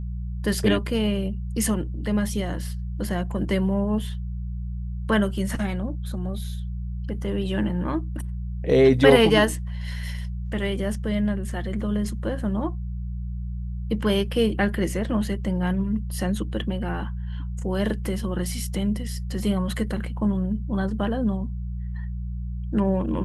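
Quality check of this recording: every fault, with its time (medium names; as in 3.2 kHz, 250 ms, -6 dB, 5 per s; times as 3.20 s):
hum 60 Hz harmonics 3 -30 dBFS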